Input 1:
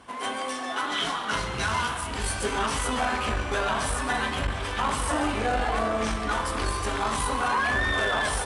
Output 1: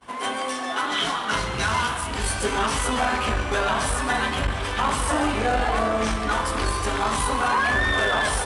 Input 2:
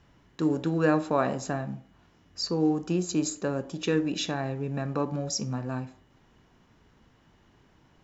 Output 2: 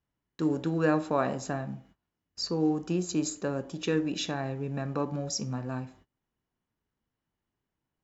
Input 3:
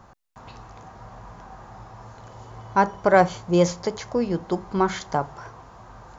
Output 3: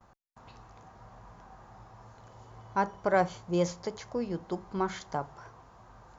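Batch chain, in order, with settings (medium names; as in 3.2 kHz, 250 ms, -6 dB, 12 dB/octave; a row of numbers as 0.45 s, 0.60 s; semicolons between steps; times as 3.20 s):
gate -53 dBFS, range -23 dB; peak normalisation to -12 dBFS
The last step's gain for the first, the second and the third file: +3.5 dB, -2.0 dB, -9.0 dB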